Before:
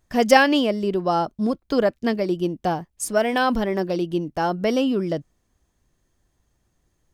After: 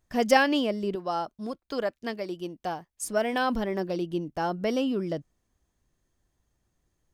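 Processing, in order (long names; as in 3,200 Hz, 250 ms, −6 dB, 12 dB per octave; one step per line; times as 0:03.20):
0:00.95–0:03.03: low-shelf EQ 390 Hz −10 dB
level −6 dB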